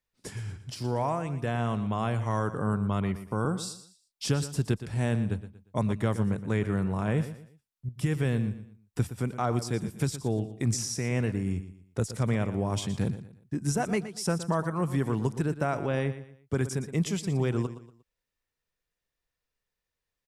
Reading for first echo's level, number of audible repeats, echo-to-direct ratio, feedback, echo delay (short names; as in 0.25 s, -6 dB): -13.0 dB, 3, -12.5 dB, 33%, 0.118 s